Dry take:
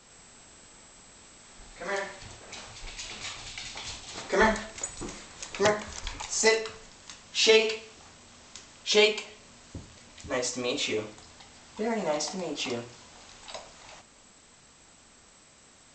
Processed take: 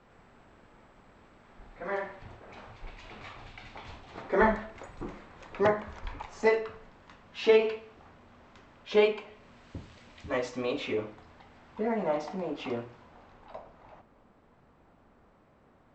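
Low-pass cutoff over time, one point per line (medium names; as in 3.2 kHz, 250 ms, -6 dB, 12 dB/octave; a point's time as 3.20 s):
9.23 s 1.6 kHz
9.91 s 3.4 kHz
11.04 s 1.8 kHz
12.77 s 1.8 kHz
13.51 s 1.1 kHz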